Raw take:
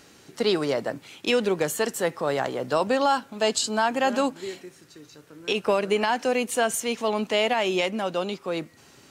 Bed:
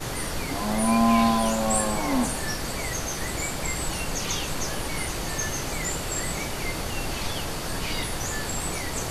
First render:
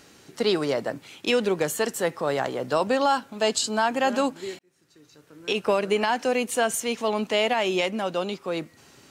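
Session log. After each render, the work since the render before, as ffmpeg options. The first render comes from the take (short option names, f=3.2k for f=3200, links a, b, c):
-filter_complex "[0:a]asplit=2[a][b];[a]atrim=end=4.59,asetpts=PTS-STARTPTS,afade=t=out:st=4.586:d=0.004:c=hsin[c];[b]atrim=start=4.59,asetpts=PTS-STARTPTS,afade=t=in:d=0.97[d];[c][d]concat=n=2:v=0:a=1"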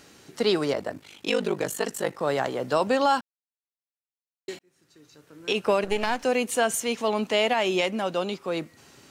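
-filter_complex "[0:a]asettb=1/sr,asplit=3[a][b][c];[a]atrim=end=0.724[d];[b]atrim=start=0.72:end=2.21,asetpts=PTS-STARTPTS,afade=t=in:d=0.004:c=qsin,afade=t=out:st=1.486:d=0.004:c=qsin,aeval=exprs='val(0)*sin(2*PI*25*n/s)':c=same[e];[c]atrim=start=2.206[f];[d][e]acrossfade=d=0.004:c1=hsin:c2=qsin[g];[g][f]acrossfade=d=0.004:c1=qsin:c2=hsin,asettb=1/sr,asplit=3[h][i][j];[h]atrim=end=5.844[k];[i]atrim=start=5.84:end=6.24,asetpts=PTS-STARTPTS,afade=t=in:d=0.004:c=qsin,afade=t=out:st=0.396:d=0.004:c=qsin,aeval=exprs='if(lt(val(0),0),0.251*val(0),val(0))':c=same[l];[j]atrim=start=6.236[m];[k][l]acrossfade=d=0.004:c1=hsin:c2=qsin[n];[n][m]acrossfade=d=0.004:c1=qsin:c2=hsin,asplit=3[o][p][q];[o]atrim=end=3.21,asetpts=PTS-STARTPTS,afade=t=out:st=3.206:d=0.004:c=hsin[r];[p]atrim=start=3.21:end=4.48,asetpts=PTS-STARTPTS,volume=0[s];[q]atrim=start=4.48,asetpts=PTS-STARTPTS,afade=t=in:d=0.004:c=hsin[t];[r][s][t]concat=n=3:v=0:a=1"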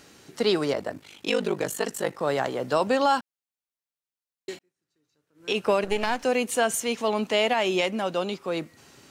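-filter_complex "[0:a]asplit=3[a][b][c];[a]atrim=end=4.73,asetpts=PTS-STARTPTS,afade=t=out:st=4.53:d=0.2:silence=0.105925[d];[b]atrim=start=4.73:end=5.34,asetpts=PTS-STARTPTS,volume=-19.5dB[e];[c]atrim=start=5.34,asetpts=PTS-STARTPTS,afade=t=in:d=0.2:silence=0.105925[f];[d][e][f]concat=n=3:v=0:a=1"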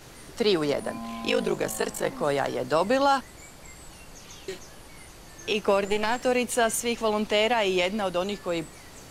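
-filter_complex "[1:a]volume=-17dB[a];[0:a][a]amix=inputs=2:normalize=0"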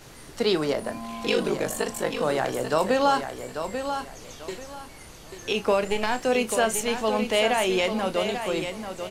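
-filter_complex "[0:a]asplit=2[a][b];[b]adelay=32,volume=-12dB[c];[a][c]amix=inputs=2:normalize=0,aecho=1:1:840|1680|2520:0.398|0.107|0.029"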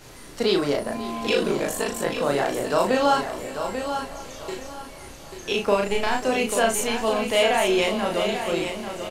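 -filter_complex "[0:a]asplit=2[a][b];[b]adelay=35,volume=-2.5dB[c];[a][c]amix=inputs=2:normalize=0,aecho=1:1:541|1082|1623|2164|2705:0.15|0.0838|0.0469|0.0263|0.0147"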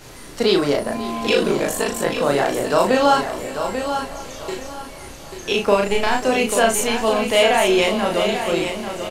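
-af "volume=4.5dB"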